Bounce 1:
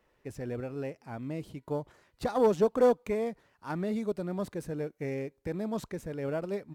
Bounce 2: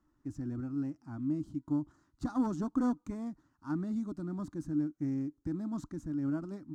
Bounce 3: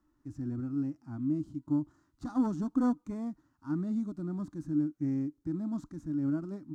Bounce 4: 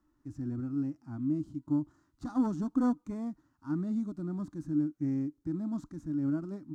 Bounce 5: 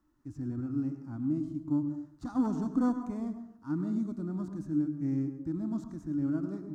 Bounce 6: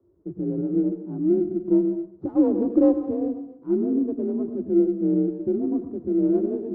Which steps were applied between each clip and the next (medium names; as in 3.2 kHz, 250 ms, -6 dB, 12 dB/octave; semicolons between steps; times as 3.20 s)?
FFT filter 140 Hz 0 dB, 210 Hz -3 dB, 300 Hz +10 dB, 450 Hz -24 dB, 650 Hz -14 dB, 1.3 kHz -3 dB, 2.3 kHz -22 dB, 6.8 kHz -4 dB, 11 kHz -17 dB
harmonic-percussive split harmonic +8 dB; trim -5.5 dB
no audible change
reverberation RT60 0.65 s, pre-delay 92 ms, DRR 8.5 dB
resonant low-pass 480 Hz, resonance Q 5; frequency shift +46 Hz; sliding maximum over 3 samples; trim +6.5 dB